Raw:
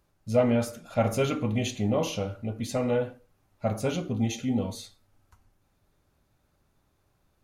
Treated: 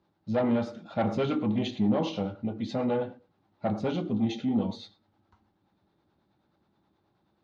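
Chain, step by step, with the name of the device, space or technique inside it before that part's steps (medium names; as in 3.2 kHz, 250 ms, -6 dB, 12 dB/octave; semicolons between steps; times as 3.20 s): guitar amplifier with harmonic tremolo (harmonic tremolo 9.4 Hz, depth 50%, crossover 410 Hz; saturation -22.5 dBFS, distortion -14 dB; cabinet simulation 100–4500 Hz, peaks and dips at 200 Hz +9 dB, 330 Hz +9 dB, 850 Hz +7 dB, 2.5 kHz -4 dB, 3.8 kHz +4 dB)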